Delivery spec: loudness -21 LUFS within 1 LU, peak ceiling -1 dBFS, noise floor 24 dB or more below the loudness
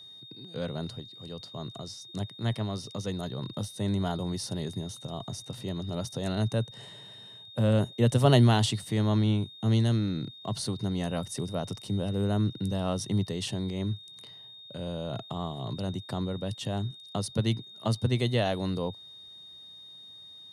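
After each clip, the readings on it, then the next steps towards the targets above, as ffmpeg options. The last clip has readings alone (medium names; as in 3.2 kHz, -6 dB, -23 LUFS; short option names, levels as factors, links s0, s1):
steady tone 3.7 kHz; tone level -46 dBFS; loudness -30.0 LUFS; peak level -8.5 dBFS; loudness target -21.0 LUFS
-> -af "bandreject=f=3700:w=30"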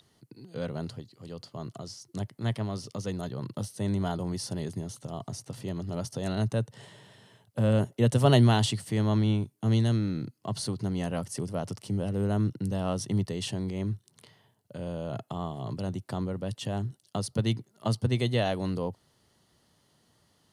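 steady tone not found; loudness -30.5 LUFS; peak level -8.5 dBFS; loudness target -21.0 LUFS
-> -af "volume=2.99,alimiter=limit=0.891:level=0:latency=1"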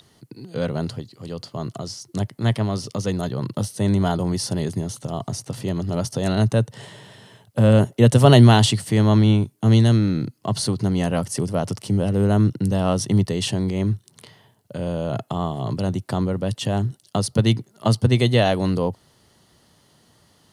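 loudness -21.0 LUFS; peak level -1.0 dBFS; noise floor -59 dBFS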